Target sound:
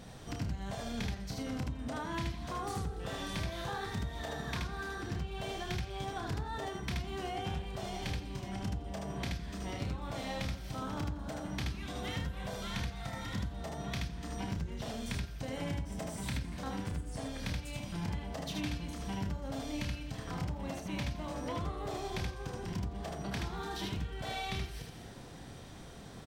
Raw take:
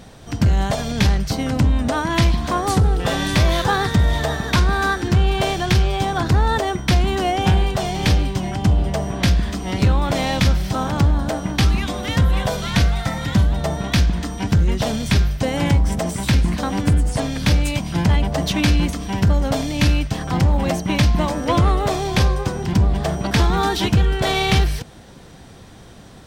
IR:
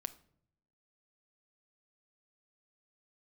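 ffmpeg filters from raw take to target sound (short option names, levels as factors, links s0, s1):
-filter_complex "[0:a]asplit=2[s0][s1];[s1]aecho=0:1:84|168|252|336|420:0.188|0.102|0.0549|0.0297|0.016[s2];[s0][s2]amix=inputs=2:normalize=0,acompressor=threshold=0.0355:ratio=6,asplit=2[s3][s4];[s4]aecho=0:1:30|77:0.473|0.708[s5];[s3][s5]amix=inputs=2:normalize=0,volume=0.355"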